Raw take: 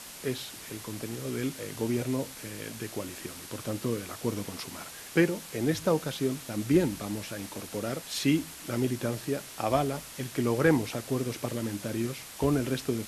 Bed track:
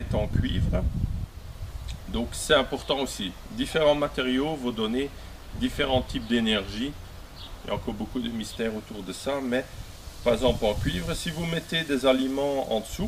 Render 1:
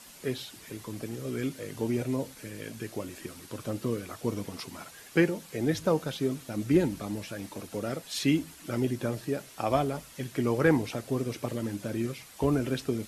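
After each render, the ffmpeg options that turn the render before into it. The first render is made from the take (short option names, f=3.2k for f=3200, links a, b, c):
-af "afftdn=nr=8:nf=-45"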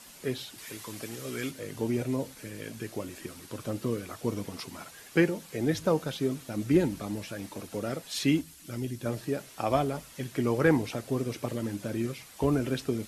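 -filter_complex "[0:a]asettb=1/sr,asplit=3[a][b][c];[a]atrim=end=0.584[d];[b]atrim=start=0.58:end=1.51,asetpts=PTS-STARTPTS,afade=t=in:d=0.004:c=qsin,afade=t=out:st=0.926:d=0.004:c=qsin,tiltshelf=f=660:g=-5.5[e];[c]atrim=start=1.506[f];[d][e]acrossfade=d=0.004:c1=hsin:c2=qsin[g];[g][f]acrossfade=d=0.004:c1=qsin:c2=hsin,asettb=1/sr,asplit=3[h][i][j];[h]atrim=end=8.414[k];[i]atrim=start=8.41:end=9.06,asetpts=PTS-STARTPTS,afade=t=in:d=0.004:c=qsin,afade=t=out:st=0.646:d=0.004:c=qsin,equalizer=f=730:w=0.31:g=-10[l];[j]atrim=start=9.056[m];[k][l]acrossfade=d=0.004:c1=hsin:c2=qsin[n];[n][m]acrossfade=d=0.004:c1=qsin:c2=hsin"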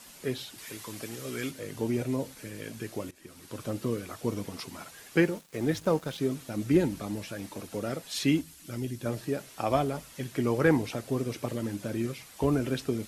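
-filter_complex "[0:a]asettb=1/sr,asplit=3[a][b][c];[a]atrim=end=5.204[d];[b]atrim=start=5.2:end=6.18,asetpts=PTS-STARTPTS,afade=t=in:d=0.004:c=qsin,afade=t=out:st=0.976:d=0.004:c=qsin,aeval=exprs='sgn(val(0))*max(abs(val(0))-0.00398,0)':c=same[e];[c]atrim=start=6.176[f];[d][e]acrossfade=d=0.004:c1=hsin:c2=qsin[g];[g][f]acrossfade=d=0.004:c1=qsin:c2=hsin,asplit=2[h][i];[h]atrim=end=3.11,asetpts=PTS-STARTPTS,afade=t=out:st=3.106:d=0.004:c=hsin:silence=0.105925[j];[i]atrim=start=3.11,asetpts=PTS-STARTPTS,afade=t=in:d=0.48:silence=0.105925[k];[j][k]concat=n=2:v=0:a=1"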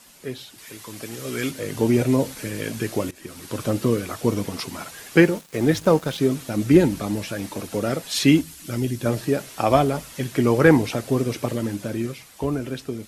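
-af "dynaudnorm=f=130:g=21:m=11.5dB"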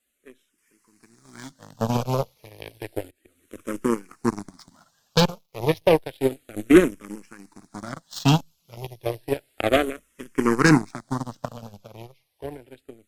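-filter_complex "[0:a]aeval=exprs='0.794*(cos(1*acos(clip(val(0)/0.794,-1,1)))-cos(1*PI/2))+0.00631*(cos(3*acos(clip(val(0)/0.794,-1,1)))-cos(3*PI/2))+0.251*(cos(5*acos(clip(val(0)/0.794,-1,1)))-cos(5*PI/2))+0.282*(cos(7*acos(clip(val(0)/0.794,-1,1)))-cos(7*PI/2))+0.0126*(cos(8*acos(clip(val(0)/0.794,-1,1)))-cos(8*PI/2))':c=same,asplit=2[a][b];[b]afreqshift=-0.31[c];[a][c]amix=inputs=2:normalize=1"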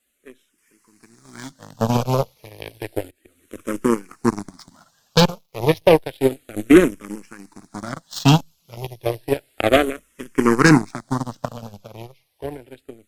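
-af "volume=4.5dB,alimiter=limit=-1dB:level=0:latency=1"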